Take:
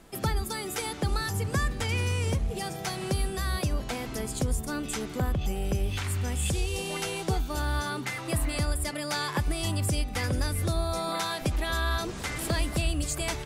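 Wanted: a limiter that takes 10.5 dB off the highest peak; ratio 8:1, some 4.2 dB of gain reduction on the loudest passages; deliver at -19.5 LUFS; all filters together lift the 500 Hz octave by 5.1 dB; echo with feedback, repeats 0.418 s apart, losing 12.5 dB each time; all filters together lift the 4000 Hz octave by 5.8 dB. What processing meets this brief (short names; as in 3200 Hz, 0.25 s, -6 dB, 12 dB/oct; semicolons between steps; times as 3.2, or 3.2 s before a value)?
bell 500 Hz +6.5 dB; bell 4000 Hz +7 dB; compressor 8:1, threshold -26 dBFS; limiter -25.5 dBFS; feedback echo 0.418 s, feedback 24%, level -12.5 dB; gain +15 dB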